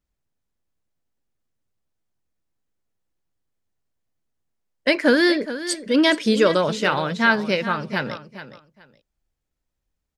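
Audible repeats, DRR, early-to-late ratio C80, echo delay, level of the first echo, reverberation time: 2, none, none, 0.42 s, -13.0 dB, none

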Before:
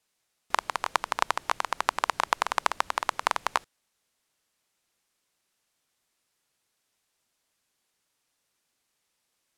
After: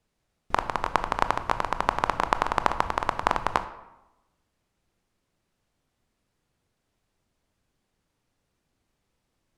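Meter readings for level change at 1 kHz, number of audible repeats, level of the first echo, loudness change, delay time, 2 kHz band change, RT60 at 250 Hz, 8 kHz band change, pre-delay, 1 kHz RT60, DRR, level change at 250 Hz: +2.5 dB, none, none, +2.0 dB, none, -0.5 dB, 1.0 s, -6.5 dB, 19 ms, 0.95 s, 10.0 dB, +10.5 dB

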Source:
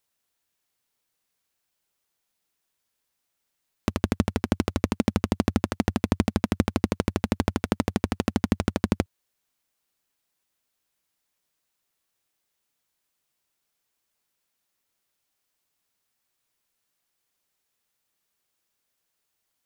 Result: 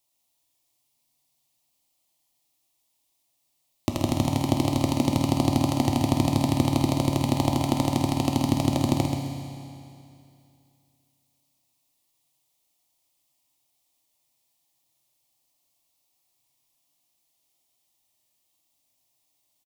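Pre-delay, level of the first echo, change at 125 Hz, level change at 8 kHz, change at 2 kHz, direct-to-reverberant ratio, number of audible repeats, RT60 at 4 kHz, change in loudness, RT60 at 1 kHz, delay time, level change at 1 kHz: 10 ms, -7.0 dB, +4.5 dB, +5.5 dB, -3.5 dB, 0.5 dB, 1, 2.6 s, +2.5 dB, 2.6 s, 0.131 s, +4.5 dB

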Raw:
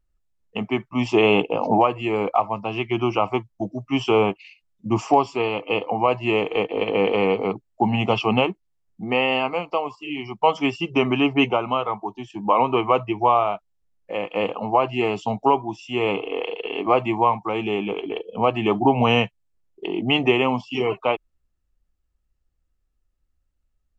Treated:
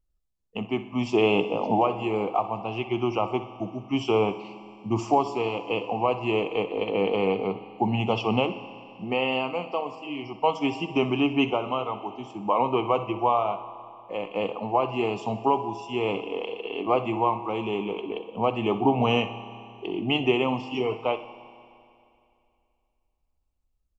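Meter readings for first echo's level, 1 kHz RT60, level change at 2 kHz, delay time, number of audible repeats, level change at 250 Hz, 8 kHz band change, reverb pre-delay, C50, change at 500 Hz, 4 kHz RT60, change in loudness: -14.5 dB, 2.6 s, -6.5 dB, 62 ms, 2, -3.5 dB, n/a, 6 ms, 10.5 dB, -4.0 dB, 2.6 s, -4.5 dB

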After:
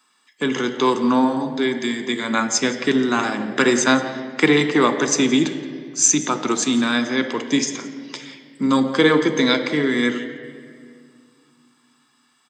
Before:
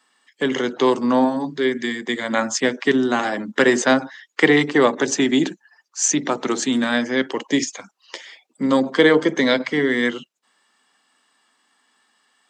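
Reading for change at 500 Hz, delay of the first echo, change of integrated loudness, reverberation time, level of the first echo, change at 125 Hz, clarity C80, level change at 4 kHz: -2.0 dB, 0.172 s, +0.5 dB, 2.1 s, -18.5 dB, +2.5 dB, 11.5 dB, +2.0 dB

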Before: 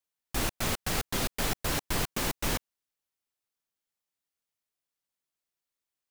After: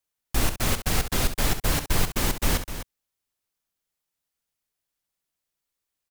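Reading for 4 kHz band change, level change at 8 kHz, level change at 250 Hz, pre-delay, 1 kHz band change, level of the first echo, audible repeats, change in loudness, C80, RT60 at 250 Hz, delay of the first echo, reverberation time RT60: +4.0 dB, +5.0 dB, +5.0 dB, none, +4.0 dB, -10.0 dB, 2, +5.0 dB, none, none, 66 ms, none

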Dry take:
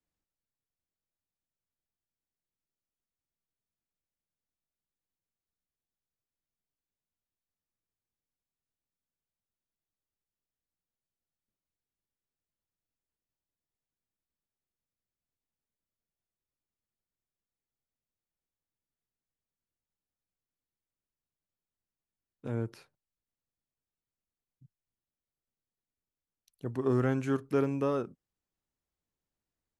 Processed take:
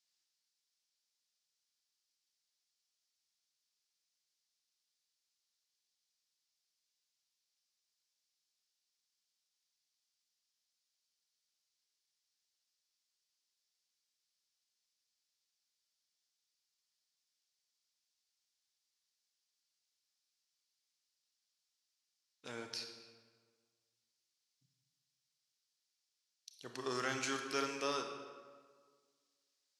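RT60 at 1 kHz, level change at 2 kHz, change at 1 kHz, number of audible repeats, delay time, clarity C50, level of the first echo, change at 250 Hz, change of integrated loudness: 1.6 s, +2.5 dB, -1.5 dB, none, none, 6.0 dB, none, -14.0 dB, -8.5 dB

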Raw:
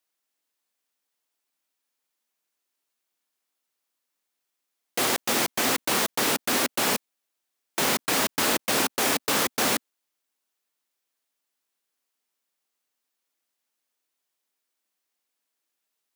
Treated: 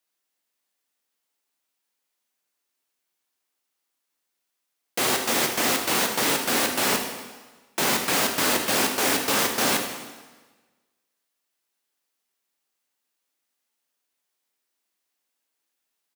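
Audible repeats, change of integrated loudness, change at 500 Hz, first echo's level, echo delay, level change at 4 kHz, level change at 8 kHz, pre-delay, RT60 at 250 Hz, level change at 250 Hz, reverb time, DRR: 1, +1.5 dB, +1.5 dB, -12.0 dB, 78 ms, +1.5 dB, +1.5 dB, 4 ms, 1.3 s, +1.5 dB, 1.3 s, 3.0 dB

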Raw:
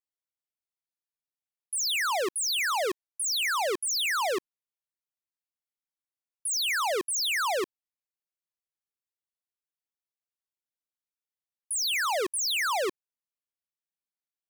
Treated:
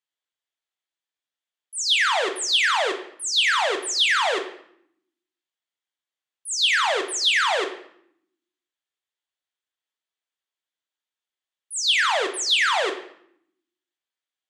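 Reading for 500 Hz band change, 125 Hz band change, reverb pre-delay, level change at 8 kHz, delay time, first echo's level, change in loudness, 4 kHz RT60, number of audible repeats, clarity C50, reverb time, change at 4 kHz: +4.0 dB, n/a, 3 ms, +1.5 dB, none, none, +6.5 dB, 0.55 s, none, 9.5 dB, 0.75 s, +9.0 dB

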